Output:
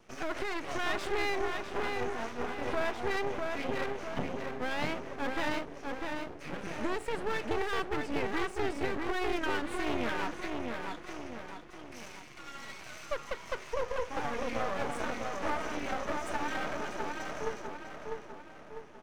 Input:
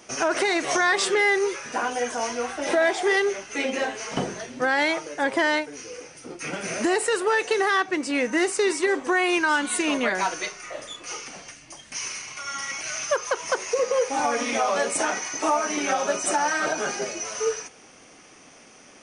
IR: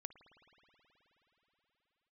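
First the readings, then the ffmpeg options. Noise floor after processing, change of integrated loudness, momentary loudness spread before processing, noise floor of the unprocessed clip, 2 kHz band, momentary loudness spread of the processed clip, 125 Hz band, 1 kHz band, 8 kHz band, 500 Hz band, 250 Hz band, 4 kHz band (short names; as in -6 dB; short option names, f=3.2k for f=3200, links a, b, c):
-49 dBFS, -11.0 dB, 13 LU, -50 dBFS, -12.0 dB, 12 LU, +0.5 dB, -9.5 dB, -21.5 dB, -10.5 dB, -8.5 dB, -11.5 dB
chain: -filter_complex "[0:a]bass=f=250:g=7,treble=f=4k:g=-14,asplit=2[a][b];[b]adelay=649,lowpass=f=2.2k:p=1,volume=-3dB,asplit=2[c][d];[d]adelay=649,lowpass=f=2.2k:p=1,volume=0.52,asplit=2[e][f];[f]adelay=649,lowpass=f=2.2k:p=1,volume=0.52,asplit=2[g][h];[h]adelay=649,lowpass=f=2.2k:p=1,volume=0.52,asplit=2[i][j];[j]adelay=649,lowpass=f=2.2k:p=1,volume=0.52,asplit=2[k][l];[l]adelay=649,lowpass=f=2.2k:p=1,volume=0.52,asplit=2[m][n];[n]adelay=649,lowpass=f=2.2k:p=1,volume=0.52[o];[a][c][e][g][i][k][m][o]amix=inputs=8:normalize=0,aeval=exprs='max(val(0),0)':c=same,volume=-7.5dB"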